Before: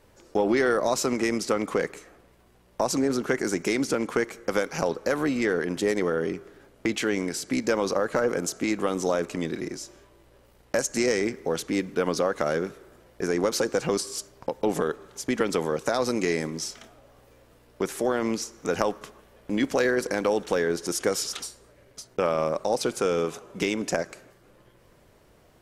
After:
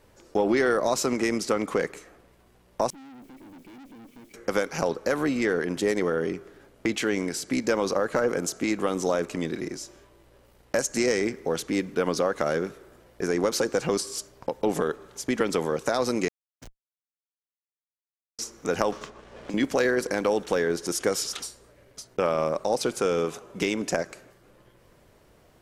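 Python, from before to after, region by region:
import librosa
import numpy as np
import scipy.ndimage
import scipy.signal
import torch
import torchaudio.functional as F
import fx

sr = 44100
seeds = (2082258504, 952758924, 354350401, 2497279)

y = fx.chain(x, sr, fx.formant_cascade(vowel='i'),
    fx.quant_dither(seeds[0], bits=10, dither='triangular'),
    fx.tube_stage(drive_db=45.0, bias=0.7), at=(2.9, 4.34))
y = fx.chain(y, sr, fx.bandpass_q(hz=6700.0, q=5.0),
    fx.schmitt(flips_db=-30.5),
    fx.band_widen(depth_pct=100), at=(16.28, 18.39))
y = fx.chain(y, sr, fx.lowpass(hz=7400.0, slope=24),
    fx.leveller(passes=1),
    fx.band_squash(depth_pct=100), at=(18.92, 19.54))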